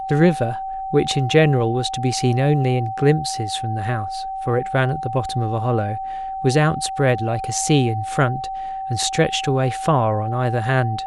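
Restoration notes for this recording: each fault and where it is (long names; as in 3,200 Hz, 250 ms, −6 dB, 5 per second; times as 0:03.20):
whistle 770 Hz −25 dBFS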